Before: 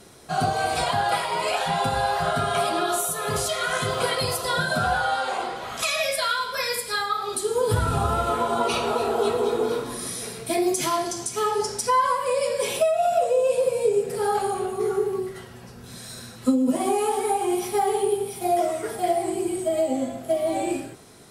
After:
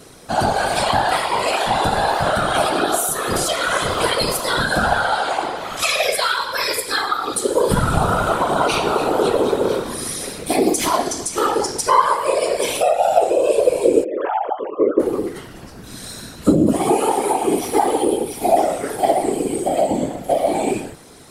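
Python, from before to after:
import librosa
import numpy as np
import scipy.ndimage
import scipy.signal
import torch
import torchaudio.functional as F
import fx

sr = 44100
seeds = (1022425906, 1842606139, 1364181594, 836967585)

y = fx.sine_speech(x, sr, at=(14.04, 15.0))
y = fx.whisperise(y, sr, seeds[0])
y = y * 10.0 ** (5.5 / 20.0)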